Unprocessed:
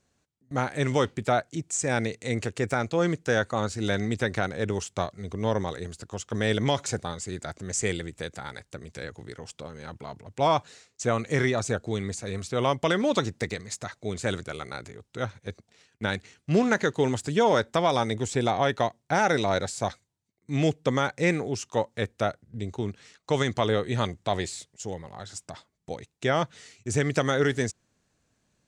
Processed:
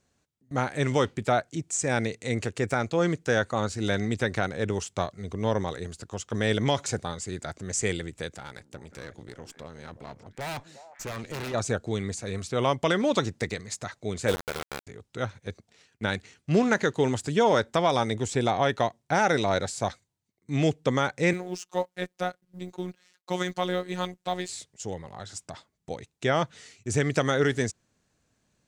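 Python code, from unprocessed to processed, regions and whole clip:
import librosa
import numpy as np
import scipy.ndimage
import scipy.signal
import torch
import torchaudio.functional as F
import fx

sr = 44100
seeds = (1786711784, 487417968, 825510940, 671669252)

y = fx.chain(x, sr, fx.overflow_wrap(gain_db=15.0),
    fx.tube_stage(drive_db=32.0, bias=0.7),
    fx.echo_stepped(ms=180, hz=250.0, octaves=1.4, feedback_pct=70, wet_db=-9.0), at=(8.36, 11.54))
y = fx.chain(y, sr, fx.peak_eq(hz=480.0, db=15.0, octaves=0.23),
    fx.sample_gate(floor_db=-26.5), at=(14.28, 14.87))
y = fx.chain(y, sr, fx.law_mismatch(coded='A'),
    fx.highpass(hz=120.0, slope=12),
    fx.robotise(hz=181.0), at=(21.33, 24.49))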